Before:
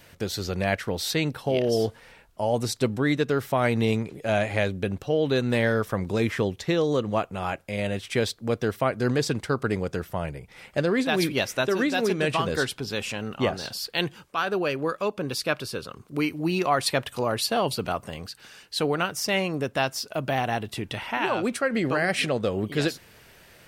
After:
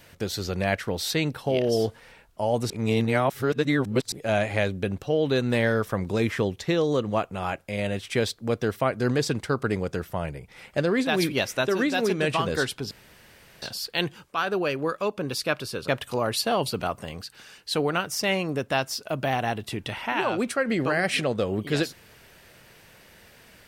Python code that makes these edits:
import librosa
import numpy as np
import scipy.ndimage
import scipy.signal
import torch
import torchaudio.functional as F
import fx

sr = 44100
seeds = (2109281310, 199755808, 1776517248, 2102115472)

y = fx.edit(x, sr, fx.reverse_span(start_s=2.7, length_s=1.42),
    fx.room_tone_fill(start_s=12.91, length_s=0.71),
    fx.cut(start_s=15.88, length_s=1.05), tone=tone)